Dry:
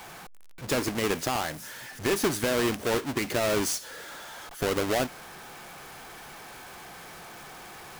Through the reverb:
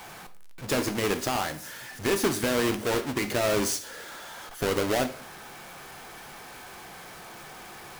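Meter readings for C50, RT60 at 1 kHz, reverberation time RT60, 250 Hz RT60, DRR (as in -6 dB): 14.5 dB, 0.50 s, 0.50 s, 0.55 s, 9.0 dB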